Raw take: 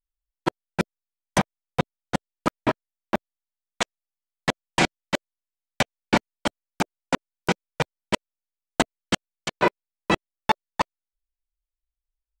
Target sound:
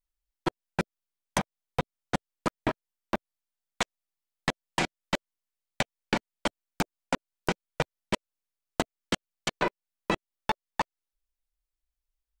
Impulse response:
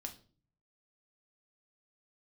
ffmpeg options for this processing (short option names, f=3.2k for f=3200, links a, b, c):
-af "acompressor=threshold=-25dB:ratio=6,aeval=exprs='(tanh(3.98*val(0)+0.5)-tanh(0.5))/3.98':c=same,volume=3dB"